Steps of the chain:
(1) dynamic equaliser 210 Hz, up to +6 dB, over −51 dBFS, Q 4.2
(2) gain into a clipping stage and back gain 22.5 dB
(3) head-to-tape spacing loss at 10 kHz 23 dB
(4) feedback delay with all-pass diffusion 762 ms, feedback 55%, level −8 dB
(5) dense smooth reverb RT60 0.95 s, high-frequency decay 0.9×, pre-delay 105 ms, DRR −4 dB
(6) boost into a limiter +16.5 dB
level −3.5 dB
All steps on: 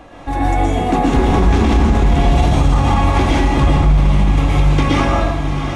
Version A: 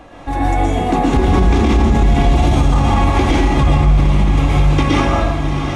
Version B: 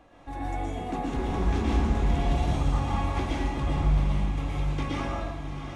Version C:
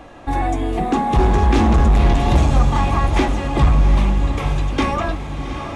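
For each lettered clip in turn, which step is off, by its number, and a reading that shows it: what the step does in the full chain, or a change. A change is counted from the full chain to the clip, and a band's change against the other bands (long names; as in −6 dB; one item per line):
2, distortion level −11 dB
6, change in crest factor +4.5 dB
5, change in crest factor +3.0 dB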